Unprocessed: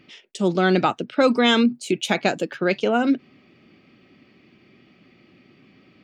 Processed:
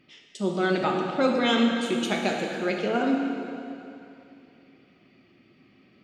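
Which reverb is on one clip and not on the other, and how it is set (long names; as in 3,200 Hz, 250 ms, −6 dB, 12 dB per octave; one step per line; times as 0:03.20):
dense smooth reverb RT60 2.8 s, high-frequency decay 0.85×, DRR 0 dB
level −7.5 dB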